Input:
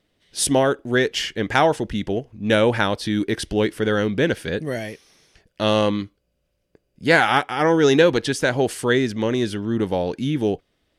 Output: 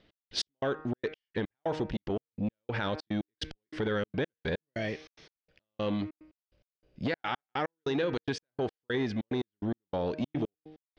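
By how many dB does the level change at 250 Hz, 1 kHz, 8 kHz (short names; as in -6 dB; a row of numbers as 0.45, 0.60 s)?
-12.0 dB, -15.0 dB, under -20 dB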